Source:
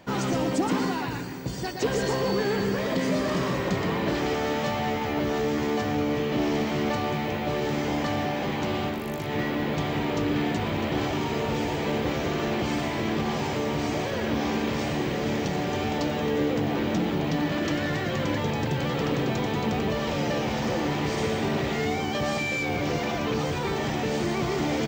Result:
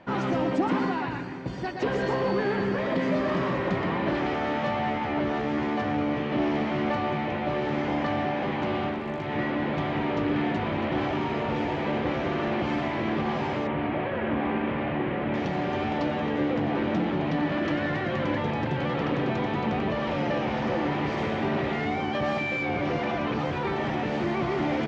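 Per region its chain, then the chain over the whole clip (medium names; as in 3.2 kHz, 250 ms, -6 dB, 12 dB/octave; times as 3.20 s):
13.67–15.34 s: CVSD coder 32 kbps + low-pass 3 kHz 24 dB/octave
whole clip: low-pass 2.5 kHz 12 dB/octave; bass shelf 150 Hz -6.5 dB; band-stop 450 Hz, Q 12; trim +1.5 dB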